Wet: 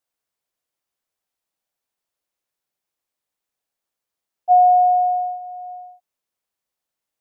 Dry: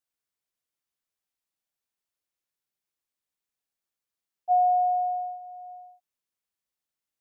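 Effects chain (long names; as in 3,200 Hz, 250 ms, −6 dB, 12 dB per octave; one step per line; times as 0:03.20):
parametric band 660 Hz +5.5 dB 1.6 octaves
level +3.5 dB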